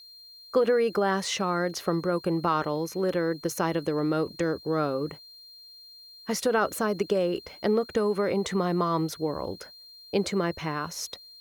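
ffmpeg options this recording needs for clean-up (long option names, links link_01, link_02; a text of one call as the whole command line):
ffmpeg -i in.wav -af "bandreject=frequency=4200:width=30,agate=range=-21dB:threshold=-42dB" out.wav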